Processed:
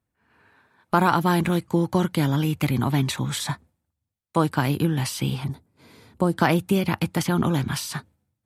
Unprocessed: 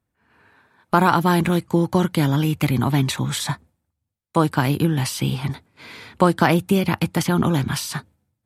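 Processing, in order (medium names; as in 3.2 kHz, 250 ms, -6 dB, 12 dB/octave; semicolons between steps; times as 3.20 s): 5.44–6.33 s: peaking EQ 2.3 kHz -14 dB 2.7 oct; trim -3 dB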